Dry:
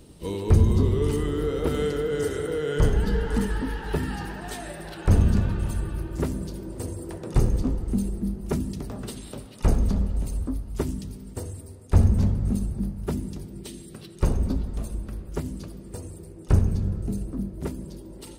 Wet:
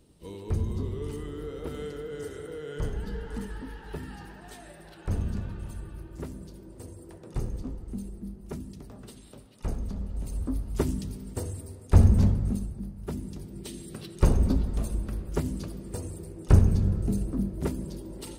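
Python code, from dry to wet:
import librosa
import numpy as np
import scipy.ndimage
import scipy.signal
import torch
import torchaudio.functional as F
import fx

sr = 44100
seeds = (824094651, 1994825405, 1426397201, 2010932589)

y = fx.gain(x, sr, db=fx.line((9.95, -11.0), (10.61, 0.5), (12.27, 0.5), (12.82, -9.0), (13.94, 1.5)))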